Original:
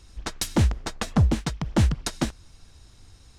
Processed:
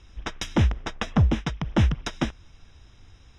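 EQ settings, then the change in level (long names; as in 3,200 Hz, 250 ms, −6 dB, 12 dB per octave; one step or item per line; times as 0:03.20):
Butterworth band-reject 4,400 Hz, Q 3.4
high-frequency loss of the air 280 metres
parametric band 7,800 Hz +13.5 dB 2.8 octaves
0.0 dB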